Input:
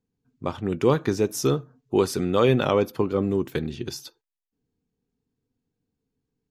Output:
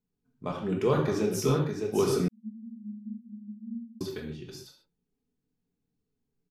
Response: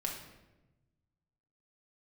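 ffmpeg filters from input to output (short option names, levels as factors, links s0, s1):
-filter_complex "[0:a]aecho=1:1:610:0.501[s0];[1:a]atrim=start_sample=2205,afade=t=out:st=0.21:d=0.01,atrim=end_sample=9702[s1];[s0][s1]afir=irnorm=-1:irlink=0,flanger=delay=0.6:depth=6.5:regen=-58:speed=1:shape=triangular,asettb=1/sr,asplit=3[s2][s3][s4];[s2]atrim=end=2.284[s5];[s3]atrim=start=2.28:end=4.01,asetpts=PTS-STARTPTS,afade=t=in:d=0.004:c=qsin,afade=t=out:st=1.726:d=0.004:c=qsin,asuperpass=centerf=220:order=20:qfactor=7.1[s6];[s4]atrim=start=4.006[s7];[s5][s6]acrossfade=d=0.004:c1=hsin:c2=qsin[s8];[s8][s7]acrossfade=d=0.004:c1=qsin:c2=hsin,volume=0.841"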